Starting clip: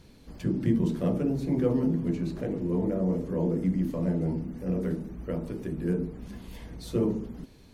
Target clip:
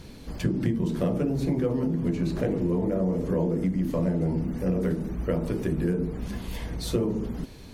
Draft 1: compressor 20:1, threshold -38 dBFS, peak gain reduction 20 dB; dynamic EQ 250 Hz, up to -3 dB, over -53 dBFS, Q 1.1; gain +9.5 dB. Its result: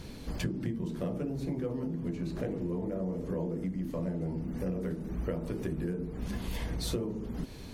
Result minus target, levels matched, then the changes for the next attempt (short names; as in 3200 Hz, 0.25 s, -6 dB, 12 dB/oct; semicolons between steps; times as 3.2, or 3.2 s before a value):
compressor: peak gain reduction +8.5 dB
change: compressor 20:1, threshold -29 dBFS, peak gain reduction 11.5 dB